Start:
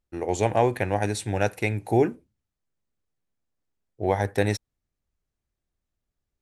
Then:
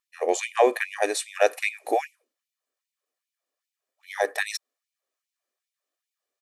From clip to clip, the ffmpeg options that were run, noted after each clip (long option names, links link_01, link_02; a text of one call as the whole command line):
ffmpeg -i in.wav -af "aecho=1:1:1.7:0.49,afftfilt=real='re*gte(b*sr/1024,230*pow(2100/230,0.5+0.5*sin(2*PI*2.5*pts/sr)))':imag='im*gte(b*sr/1024,230*pow(2100/230,0.5+0.5*sin(2*PI*2.5*pts/sr)))':win_size=1024:overlap=0.75,volume=3.5dB" out.wav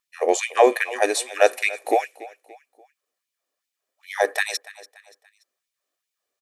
ffmpeg -i in.wav -af "aecho=1:1:288|576|864:0.112|0.046|0.0189,volume=4dB" out.wav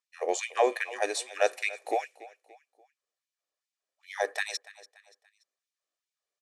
ffmpeg -i in.wav -af "lowpass=7300,bass=frequency=250:gain=-12,treble=frequency=4000:gain=4,volume=-8.5dB" out.wav